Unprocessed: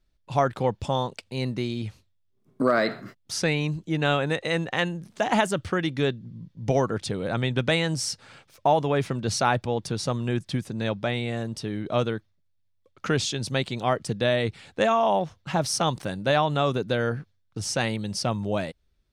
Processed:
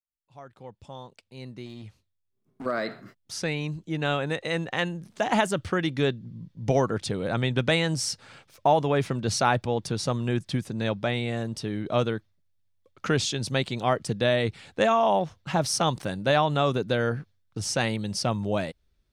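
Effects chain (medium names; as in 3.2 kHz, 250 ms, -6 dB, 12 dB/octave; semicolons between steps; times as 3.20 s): fade-in on the opening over 5.98 s; 1.66–2.66 s: overload inside the chain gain 35.5 dB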